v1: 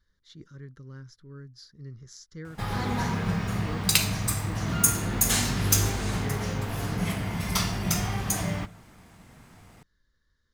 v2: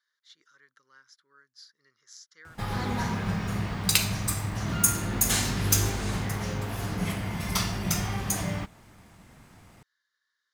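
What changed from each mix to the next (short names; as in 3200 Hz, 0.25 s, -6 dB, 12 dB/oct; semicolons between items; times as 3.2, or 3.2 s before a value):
speech: add Chebyshev high-pass 1300 Hz, order 2; reverb: off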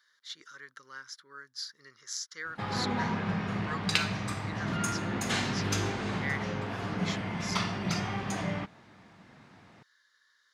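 speech +12.0 dB; background: add BPF 140–3600 Hz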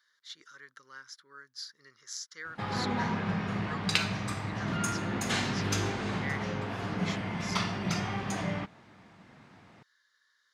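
speech -3.0 dB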